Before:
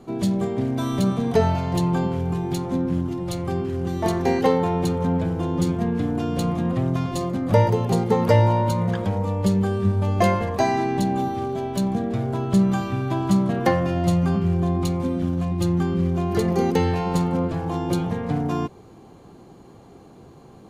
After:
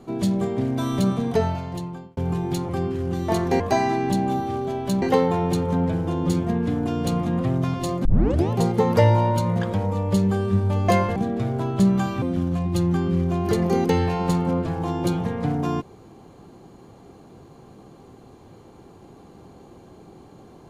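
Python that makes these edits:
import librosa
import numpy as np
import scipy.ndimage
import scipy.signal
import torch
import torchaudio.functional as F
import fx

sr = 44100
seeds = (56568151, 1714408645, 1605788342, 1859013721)

y = fx.edit(x, sr, fx.fade_out_span(start_s=1.11, length_s=1.06),
    fx.cut(start_s=2.69, length_s=0.74),
    fx.tape_start(start_s=7.37, length_s=0.46),
    fx.move(start_s=10.48, length_s=1.42, to_s=4.34),
    fx.cut(start_s=12.96, length_s=2.12), tone=tone)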